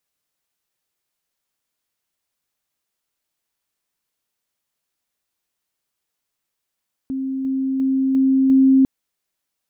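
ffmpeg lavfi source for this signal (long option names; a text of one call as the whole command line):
ffmpeg -f lavfi -i "aevalsrc='pow(10,(-21.5+3*floor(t/0.35))/20)*sin(2*PI*266*t)':duration=1.75:sample_rate=44100" out.wav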